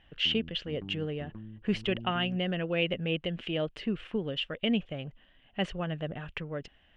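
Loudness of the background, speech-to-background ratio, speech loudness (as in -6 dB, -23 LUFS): -46.0 LUFS, 13.5 dB, -32.5 LUFS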